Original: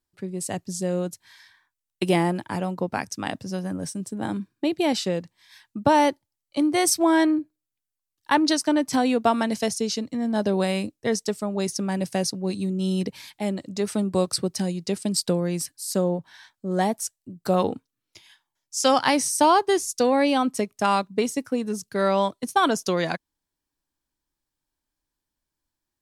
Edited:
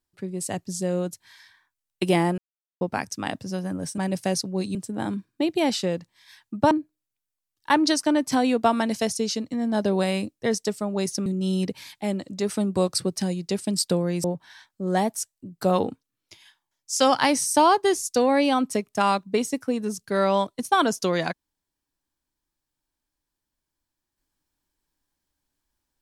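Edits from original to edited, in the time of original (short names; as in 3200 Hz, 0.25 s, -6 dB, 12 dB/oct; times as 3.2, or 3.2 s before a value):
2.38–2.81 mute
5.94–7.32 cut
11.87–12.64 move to 3.98
15.62–16.08 cut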